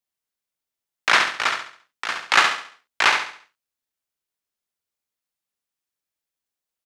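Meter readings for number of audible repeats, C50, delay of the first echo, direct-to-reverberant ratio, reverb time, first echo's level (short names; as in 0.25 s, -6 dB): 4, none, 69 ms, none, none, -6.0 dB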